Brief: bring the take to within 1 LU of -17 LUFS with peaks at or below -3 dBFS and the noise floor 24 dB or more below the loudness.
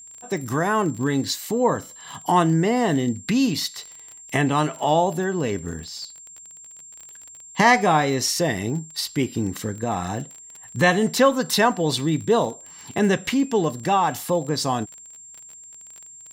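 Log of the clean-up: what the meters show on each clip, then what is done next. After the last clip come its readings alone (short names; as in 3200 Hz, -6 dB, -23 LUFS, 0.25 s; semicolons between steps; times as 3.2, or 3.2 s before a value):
ticks 27/s; steady tone 7400 Hz; tone level -41 dBFS; loudness -22.0 LUFS; peak -4.0 dBFS; loudness target -17.0 LUFS
-> de-click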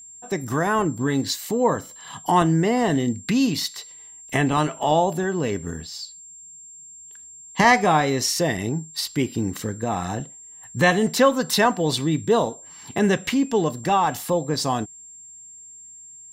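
ticks 0/s; steady tone 7400 Hz; tone level -41 dBFS
-> notch 7400 Hz, Q 30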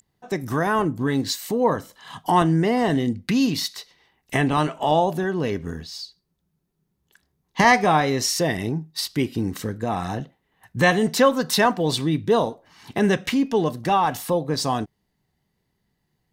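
steady tone none; loudness -22.0 LUFS; peak -4.0 dBFS; loudness target -17.0 LUFS
-> gain +5 dB; limiter -3 dBFS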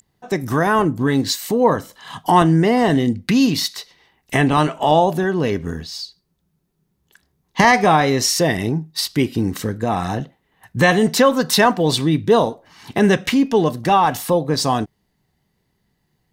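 loudness -17.5 LUFS; peak -3.0 dBFS; noise floor -69 dBFS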